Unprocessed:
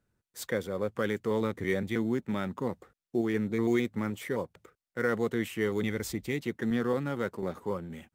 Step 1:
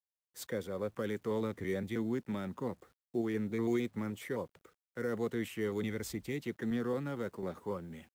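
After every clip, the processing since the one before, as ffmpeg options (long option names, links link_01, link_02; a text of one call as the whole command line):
ffmpeg -i in.wav -filter_complex "[0:a]acrossover=split=380|560|4400[link_01][link_02][link_03][link_04];[link_03]alimiter=level_in=7dB:limit=-24dB:level=0:latency=1:release=21,volume=-7dB[link_05];[link_01][link_02][link_05][link_04]amix=inputs=4:normalize=0,acrusher=bits=10:mix=0:aa=0.000001,volume=-5dB" out.wav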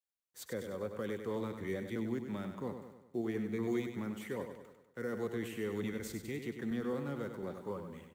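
ffmpeg -i in.wav -filter_complex "[0:a]bandreject=frequency=5100:width=19,asplit=2[link_01][link_02];[link_02]aecho=0:1:98|196|294|392|490|588:0.398|0.207|0.108|0.056|0.0291|0.0151[link_03];[link_01][link_03]amix=inputs=2:normalize=0,volume=-3dB" out.wav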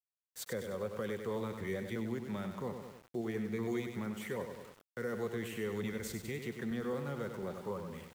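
ffmpeg -i in.wav -filter_complex "[0:a]asplit=2[link_01][link_02];[link_02]acompressor=threshold=-44dB:ratio=6,volume=0dB[link_03];[link_01][link_03]amix=inputs=2:normalize=0,equalizer=frequency=290:width_type=o:width=0.41:gain=-8.5,aeval=exprs='val(0)*gte(abs(val(0)),0.00251)':channel_layout=same,volume=-1dB" out.wav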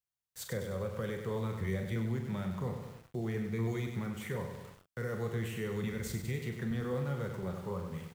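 ffmpeg -i in.wav -filter_complex "[0:a]lowshelf=frequency=190:width_type=q:width=1.5:gain=7.5,asplit=2[link_01][link_02];[link_02]aecho=0:1:32|44:0.282|0.335[link_03];[link_01][link_03]amix=inputs=2:normalize=0" out.wav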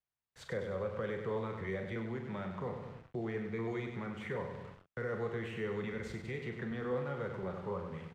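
ffmpeg -i in.wav -filter_complex "[0:a]lowpass=2400,acrossover=split=280[link_01][link_02];[link_01]acompressor=threshold=-45dB:ratio=6[link_03];[link_03][link_02]amix=inputs=2:normalize=0,crystalizer=i=1:c=0,volume=1.5dB" out.wav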